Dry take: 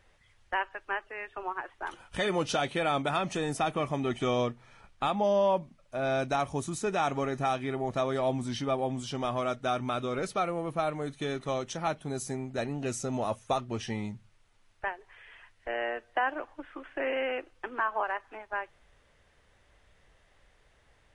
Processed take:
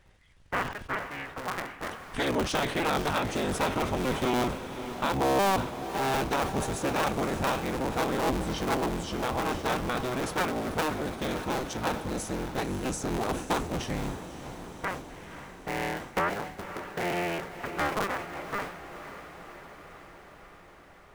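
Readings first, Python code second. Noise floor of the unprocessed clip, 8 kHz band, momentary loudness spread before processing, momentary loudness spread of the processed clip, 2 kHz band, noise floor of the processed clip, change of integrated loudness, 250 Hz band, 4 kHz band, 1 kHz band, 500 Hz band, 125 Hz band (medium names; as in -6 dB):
-65 dBFS, +4.5 dB, 9 LU, 14 LU, +2.5 dB, -52 dBFS, +1.5 dB, +3.5 dB, +3.5 dB, +1.5 dB, -0.5 dB, +2.0 dB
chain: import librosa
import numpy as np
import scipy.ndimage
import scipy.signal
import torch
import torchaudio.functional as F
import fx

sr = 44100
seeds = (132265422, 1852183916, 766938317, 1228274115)

p1 = fx.cycle_switch(x, sr, every=3, mode='inverted')
p2 = fx.low_shelf(p1, sr, hz=190.0, db=4.0)
p3 = p2 + fx.echo_diffused(p2, sr, ms=547, feedback_pct=68, wet_db=-11.5, dry=0)
y = fx.sustainer(p3, sr, db_per_s=89.0)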